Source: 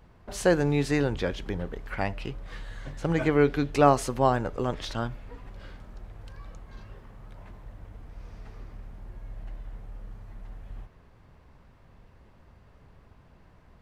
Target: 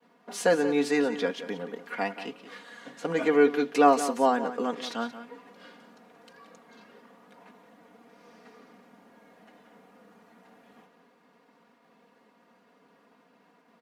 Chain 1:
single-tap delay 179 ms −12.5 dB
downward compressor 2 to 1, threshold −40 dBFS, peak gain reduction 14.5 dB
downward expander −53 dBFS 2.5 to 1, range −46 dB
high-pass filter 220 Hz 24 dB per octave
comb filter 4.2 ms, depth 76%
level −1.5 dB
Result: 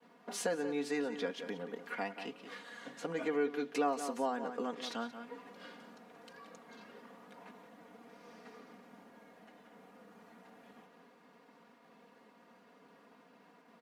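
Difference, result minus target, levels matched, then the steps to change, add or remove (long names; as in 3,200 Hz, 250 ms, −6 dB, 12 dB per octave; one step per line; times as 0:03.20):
downward compressor: peak gain reduction +14.5 dB
remove: downward compressor 2 to 1, threshold −40 dBFS, peak gain reduction 14.5 dB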